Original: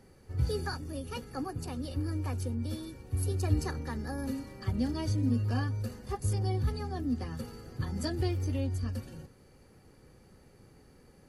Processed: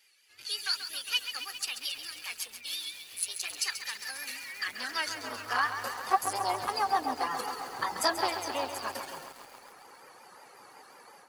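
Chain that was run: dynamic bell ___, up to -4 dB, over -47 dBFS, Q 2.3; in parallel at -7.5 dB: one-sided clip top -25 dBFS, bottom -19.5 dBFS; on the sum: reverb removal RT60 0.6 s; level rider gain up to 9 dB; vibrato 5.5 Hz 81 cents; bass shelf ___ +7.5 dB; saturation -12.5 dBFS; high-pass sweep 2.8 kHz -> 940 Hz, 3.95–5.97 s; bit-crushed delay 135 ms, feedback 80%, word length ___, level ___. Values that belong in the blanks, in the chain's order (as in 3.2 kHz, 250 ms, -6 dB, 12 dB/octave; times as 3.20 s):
220 Hz, 360 Hz, 8-bit, -9 dB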